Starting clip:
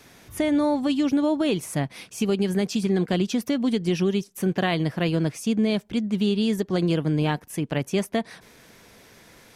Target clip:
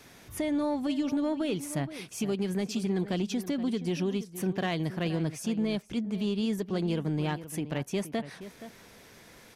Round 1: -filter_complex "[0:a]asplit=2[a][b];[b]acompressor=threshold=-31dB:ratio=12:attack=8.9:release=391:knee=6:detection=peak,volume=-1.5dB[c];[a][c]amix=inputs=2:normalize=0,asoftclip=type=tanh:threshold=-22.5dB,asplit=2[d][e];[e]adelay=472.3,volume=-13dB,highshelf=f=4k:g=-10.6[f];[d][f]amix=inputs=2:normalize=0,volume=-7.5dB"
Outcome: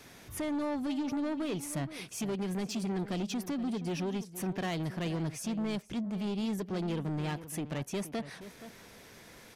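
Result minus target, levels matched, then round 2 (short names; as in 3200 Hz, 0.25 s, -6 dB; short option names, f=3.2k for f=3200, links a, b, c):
soft clip: distortion +12 dB
-filter_complex "[0:a]asplit=2[a][b];[b]acompressor=threshold=-31dB:ratio=12:attack=8.9:release=391:knee=6:detection=peak,volume=-1.5dB[c];[a][c]amix=inputs=2:normalize=0,asoftclip=type=tanh:threshold=-13dB,asplit=2[d][e];[e]adelay=472.3,volume=-13dB,highshelf=f=4k:g=-10.6[f];[d][f]amix=inputs=2:normalize=0,volume=-7.5dB"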